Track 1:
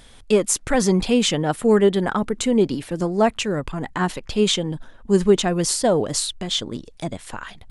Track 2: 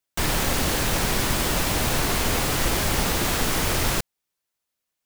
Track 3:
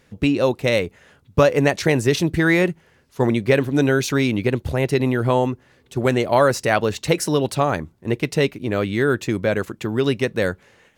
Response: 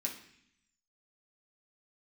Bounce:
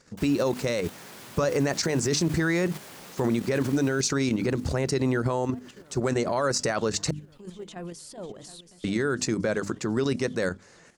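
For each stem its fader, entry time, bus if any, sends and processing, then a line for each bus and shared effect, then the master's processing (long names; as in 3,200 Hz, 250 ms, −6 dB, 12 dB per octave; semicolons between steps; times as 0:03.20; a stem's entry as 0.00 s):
−5.0 dB, 2.30 s, bus A, no send, echo send −21.5 dB, brickwall limiter −15.5 dBFS, peak gain reduction 11.5 dB; automatic ducking −18 dB, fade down 0.80 s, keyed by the third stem
−12.0 dB, 0.00 s, bus A, no send, echo send −18 dB, high-pass filter 140 Hz 24 dB per octave
+0.5 dB, 0.00 s, muted 0:07.11–0:08.84, no bus, no send, no echo send, drawn EQ curve 110 Hz 0 dB, 160 Hz +5 dB, 800 Hz +2 dB, 1,300 Hz +6 dB, 2,200 Hz 0 dB, 3,300 Hz −3 dB, 4,700 Hz +11 dB, 7,800 Hz +11 dB, 12,000 Hz −8 dB
bus A: 0.0 dB, high-pass filter 50 Hz 6 dB per octave; brickwall limiter −29.5 dBFS, peak gain reduction 9 dB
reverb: not used
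echo: repeating echo 728 ms, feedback 59%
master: mains-hum notches 50/100/150/200/250/300 Hz; output level in coarse steps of 9 dB; brickwall limiter −16 dBFS, peak gain reduction 16 dB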